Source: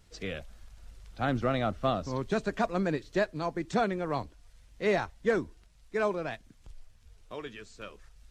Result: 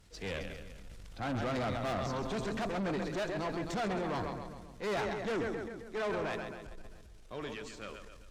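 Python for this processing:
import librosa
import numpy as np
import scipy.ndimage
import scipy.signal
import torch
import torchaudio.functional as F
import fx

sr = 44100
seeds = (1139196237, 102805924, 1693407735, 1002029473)

y = fx.echo_split(x, sr, split_hz=310.0, low_ms=188, high_ms=133, feedback_pct=52, wet_db=-10.0)
y = fx.tube_stage(y, sr, drive_db=33.0, bias=0.55)
y = fx.transient(y, sr, attack_db=-3, sustain_db=6)
y = y * 10.0 ** (2.5 / 20.0)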